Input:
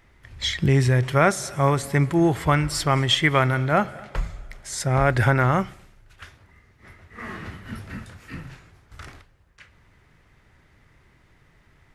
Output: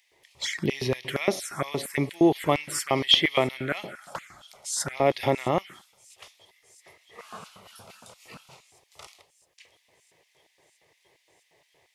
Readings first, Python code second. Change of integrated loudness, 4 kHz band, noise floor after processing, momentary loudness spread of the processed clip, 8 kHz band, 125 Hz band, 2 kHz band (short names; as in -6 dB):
-4.5 dB, +1.5 dB, -69 dBFS, 21 LU, -1.0 dB, -14.0 dB, -6.5 dB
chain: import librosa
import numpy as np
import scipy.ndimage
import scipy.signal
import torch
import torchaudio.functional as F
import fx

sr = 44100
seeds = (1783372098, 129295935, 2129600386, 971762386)

y = fx.env_phaser(x, sr, low_hz=230.0, high_hz=1500.0, full_db=-17.0)
y = fx.echo_wet_highpass(y, sr, ms=661, feedback_pct=78, hz=5500.0, wet_db=-22.5)
y = fx.filter_lfo_highpass(y, sr, shape='square', hz=4.3, low_hz=310.0, high_hz=2400.0, q=0.84)
y = y * 10.0 ** (3.0 / 20.0)